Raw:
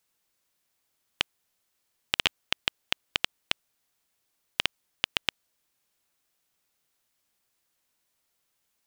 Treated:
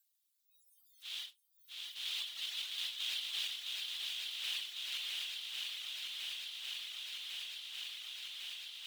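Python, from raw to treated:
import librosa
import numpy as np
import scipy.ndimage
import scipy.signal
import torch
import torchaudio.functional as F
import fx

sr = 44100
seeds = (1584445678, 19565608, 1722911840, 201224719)

p1 = fx.phase_scramble(x, sr, seeds[0], window_ms=200)
p2 = fx.doppler_pass(p1, sr, speed_mps=11, closest_m=3.4, pass_at_s=3.74)
p3 = fx.dereverb_blind(p2, sr, rt60_s=1.1)
p4 = scipy.signal.lfilter([1.0, -0.97], [1.0], p3)
p5 = fx.noise_reduce_blind(p4, sr, reduce_db=25)
p6 = fx.peak_eq(p5, sr, hz=3700.0, db=8.0, octaves=0.54)
p7 = fx.level_steps(p6, sr, step_db=24)
p8 = p6 + F.gain(torch.from_numpy(p7), -2.0).numpy()
p9 = fx.quant_float(p8, sr, bits=4)
p10 = p9 + fx.echo_swing(p9, sr, ms=1101, ratio=1.5, feedback_pct=57, wet_db=-9.5, dry=0)
p11 = fx.env_flatten(p10, sr, amount_pct=70)
y = F.gain(torch.from_numpy(p11), -2.0).numpy()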